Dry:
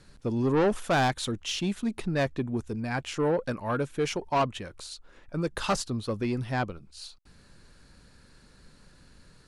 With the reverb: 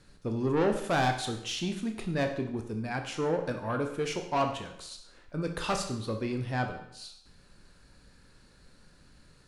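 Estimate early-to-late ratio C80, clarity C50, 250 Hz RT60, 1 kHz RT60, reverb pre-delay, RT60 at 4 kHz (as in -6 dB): 11.0 dB, 8.0 dB, 0.70 s, 0.75 s, 18 ms, 0.70 s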